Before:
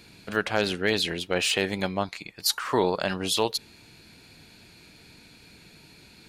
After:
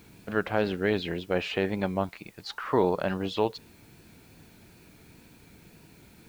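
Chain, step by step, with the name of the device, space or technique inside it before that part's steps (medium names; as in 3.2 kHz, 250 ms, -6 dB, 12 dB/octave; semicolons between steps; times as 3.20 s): cassette deck with a dirty head (tape spacing loss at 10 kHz 35 dB; wow and flutter; white noise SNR 31 dB); trim +1.5 dB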